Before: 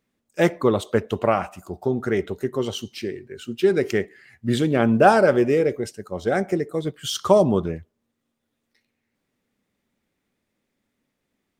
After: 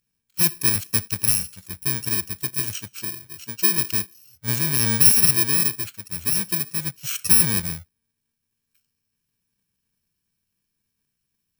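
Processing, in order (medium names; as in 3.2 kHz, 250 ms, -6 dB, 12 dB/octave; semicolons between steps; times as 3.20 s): bit-reversed sample order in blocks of 64 samples; high-order bell 500 Hz -10.5 dB 2.6 oct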